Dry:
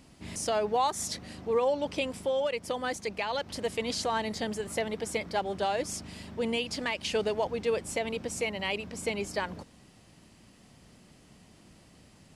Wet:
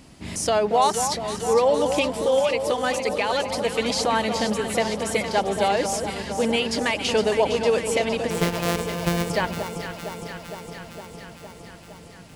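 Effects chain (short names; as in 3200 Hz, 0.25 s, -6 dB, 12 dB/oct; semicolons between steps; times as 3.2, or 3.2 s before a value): 8.3–9.3 sample sorter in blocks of 256 samples; echo with dull and thin repeats by turns 0.23 s, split 1100 Hz, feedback 84%, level -7 dB; gain +7.5 dB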